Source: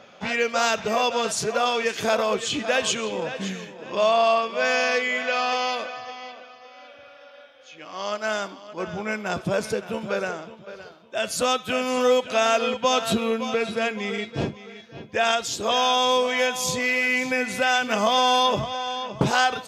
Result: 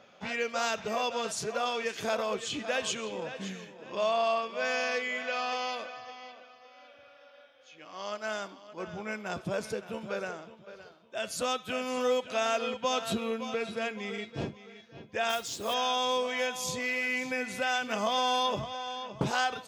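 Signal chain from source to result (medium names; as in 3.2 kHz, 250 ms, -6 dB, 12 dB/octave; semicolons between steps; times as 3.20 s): 15.29–15.74 s: modulation noise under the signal 16 dB; trim -8.5 dB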